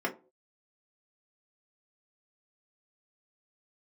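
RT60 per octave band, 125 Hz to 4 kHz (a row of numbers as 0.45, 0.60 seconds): 0.35, 0.40, 0.45, 0.30, 0.20, 0.15 seconds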